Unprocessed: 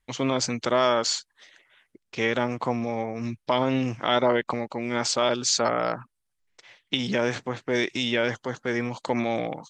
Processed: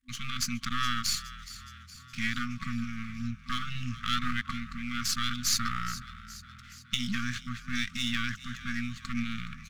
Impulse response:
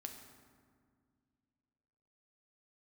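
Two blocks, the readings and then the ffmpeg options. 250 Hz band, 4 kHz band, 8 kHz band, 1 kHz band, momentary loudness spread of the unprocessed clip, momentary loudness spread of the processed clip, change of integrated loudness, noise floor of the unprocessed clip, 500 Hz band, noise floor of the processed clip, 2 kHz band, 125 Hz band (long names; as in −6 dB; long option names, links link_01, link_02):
−7.0 dB, −3.5 dB, −3.5 dB, −9.0 dB, 8 LU, 15 LU, −7.0 dB, −78 dBFS, below −40 dB, −51 dBFS, −4.0 dB, −3.5 dB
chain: -filter_complex "[0:a]aeval=exprs='if(lt(val(0),0),0.251*val(0),val(0))':channel_layout=same,asplit=7[link_01][link_02][link_03][link_04][link_05][link_06][link_07];[link_02]adelay=418,afreqshift=40,volume=-15.5dB[link_08];[link_03]adelay=836,afreqshift=80,volume=-20.4dB[link_09];[link_04]adelay=1254,afreqshift=120,volume=-25.3dB[link_10];[link_05]adelay=1672,afreqshift=160,volume=-30.1dB[link_11];[link_06]adelay=2090,afreqshift=200,volume=-35dB[link_12];[link_07]adelay=2508,afreqshift=240,volume=-39.9dB[link_13];[link_01][link_08][link_09][link_10][link_11][link_12][link_13]amix=inputs=7:normalize=0,afftfilt=real='re*(1-between(b*sr/4096,250,1100))':imag='im*(1-between(b*sr/4096,250,1100))':win_size=4096:overlap=0.75"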